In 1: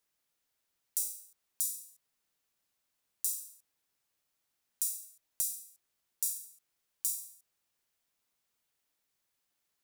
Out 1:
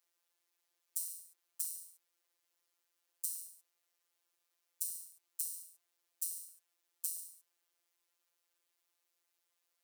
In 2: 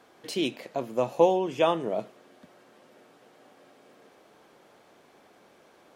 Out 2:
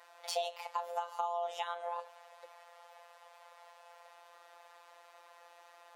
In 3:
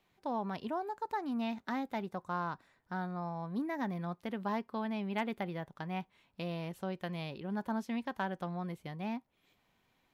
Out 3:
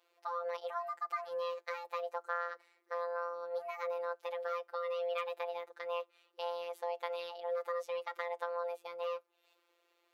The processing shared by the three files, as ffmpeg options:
-af "afreqshift=320,acompressor=threshold=-32dB:ratio=12,afftfilt=real='hypot(re,im)*cos(PI*b)':imag='0':win_size=1024:overlap=0.75,volume=2.5dB"

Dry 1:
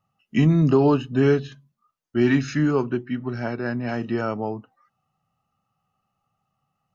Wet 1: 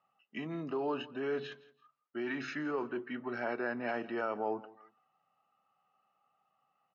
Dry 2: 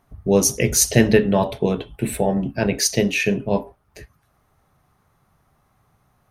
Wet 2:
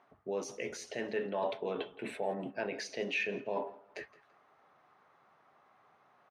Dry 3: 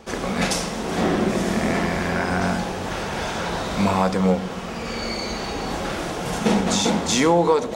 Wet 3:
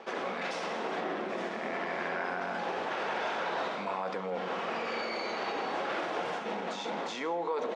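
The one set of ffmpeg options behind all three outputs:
-af "areverse,acompressor=threshold=-26dB:ratio=6,areverse,alimiter=limit=-23dB:level=0:latency=1:release=53,highpass=430,lowpass=2.9k,aecho=1:1:167|334:0.1|0.029,volume=1.5dB"

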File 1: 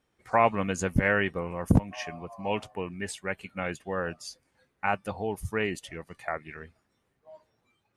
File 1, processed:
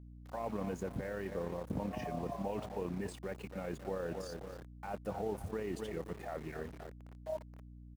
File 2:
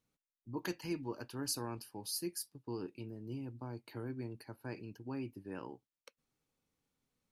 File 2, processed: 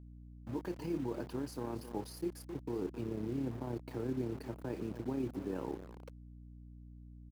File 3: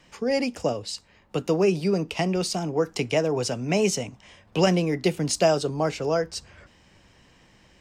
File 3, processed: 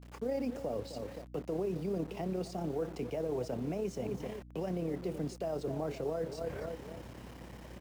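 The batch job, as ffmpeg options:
-filter_complex "[0:a]asplit=2[a][b];[b]asoftclip=type=tanh:threshold=-24.5dB,volume=-6dB[c];[a][c]amix=inputs=2:normalize=0,asplit=2[d][e];[e]adelay=261,lowpass=f=2.1k:p=1,volume=-17.5dB,asplit=2[f][g];[g]adelay=261,lowpass=f=2.1k:p=1,volume=0.37,asplit=2[h][i];[i]adelay=261,lowpass=f=2.1k:p=1,volume=0.37[j];[d][f][h][j]amix=inputs=4:normalize=0,tremolo=f=34:d=0.519,areverse,acompressor=threshold=-37dB:ratio=5,areverse,alimiter=level_in=12.5dB:limit=-24dB:level=0:latency=1:release=84,volume=-12.5dB,adynamicequalizer=threshold=0.00178:dfrequency=540:dqfactor=0.84:tfrequency=540:tqfactor=0.84:attack=5:release=100:ratio=0.375:range=1.5:mode=boostabove:tftype=bell,acrusher=bits=8:mix=0:aa=0.000001,highpass=f=160:p=1,tiltshelf=f=1.3k:g=8,aeval=exprs='val(0)+0.00224*(sin(2*PI*60*n/s)+sin(2*PI*2*60*n/s)/2+sin(2*PI*3*60*n/s)/3+sin(2*PI*4*60*n/s)/4+sin(2*PI*5*60*n/s)/5)':c=same,volume=2dB"

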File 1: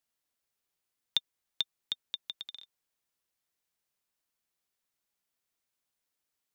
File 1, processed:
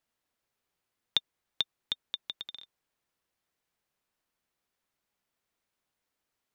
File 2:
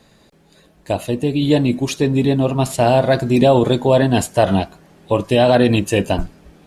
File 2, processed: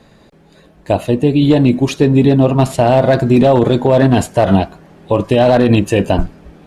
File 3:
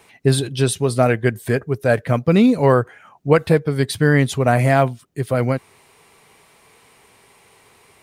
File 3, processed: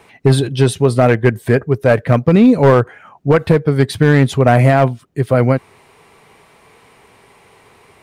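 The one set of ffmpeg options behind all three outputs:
-af "highshelf=f=3.6k:g=-10,aeval=exprs='clip(val(0),-1,0.335)':c=same,alimiter=level_in=7.5dB:limit=-1dB:release=50:level=0:latency=1,volume=-1dB"

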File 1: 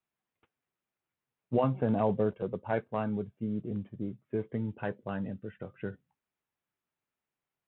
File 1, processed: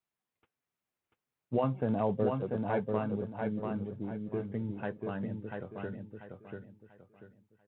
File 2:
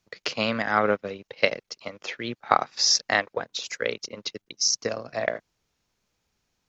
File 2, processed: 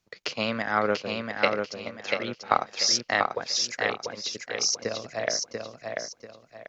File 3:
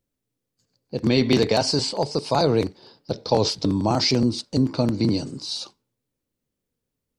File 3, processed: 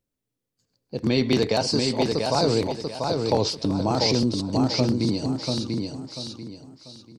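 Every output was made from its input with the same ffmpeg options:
-af "aecho=1:1:690|1380|2070|2760:0.631|0.196|0.0606|0.0188,volume=-2.5dB"

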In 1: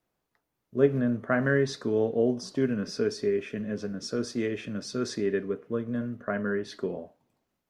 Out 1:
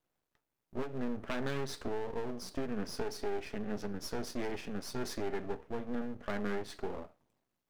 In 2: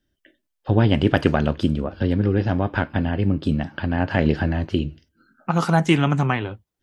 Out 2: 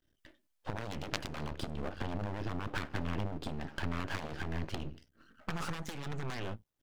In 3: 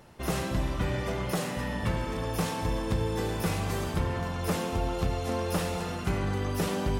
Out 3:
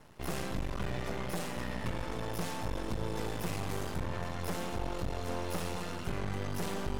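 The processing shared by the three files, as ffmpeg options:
-af "aeval=exprs='0.891*(cos(1*acos(clip(val(0)/0.891,-1,1)))-cos(1*PI/2))+0.355*(cos(4*acos(clip(val(0)/0.891,-1,1)))-cos(4*PI/2))':c=same,acompressor=threshold=-22dB:ratio=6,aeval=exprs='max(val(0),0)':c=same"

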